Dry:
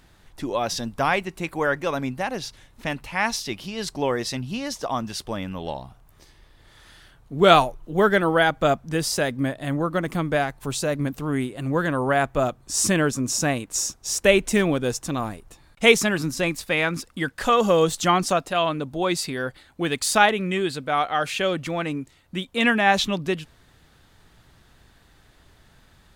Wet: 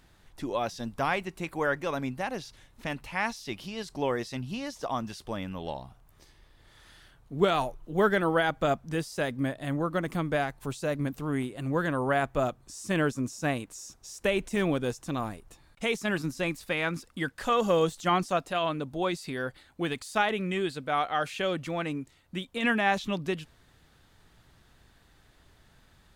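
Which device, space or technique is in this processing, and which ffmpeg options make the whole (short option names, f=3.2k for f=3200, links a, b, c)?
de-esser from a sidechain: -filter_complex "[0:a]asplit=2[a][b];[b]highpass=f=4.6k:w=0.5412,highpass=f=4.6k:w=1.3066,apad=whole_len=1153593[c];[a][c]sidechaincompress=threshold=-42dB:ratio=3:attack=2.9:release=26,volume=-5dB"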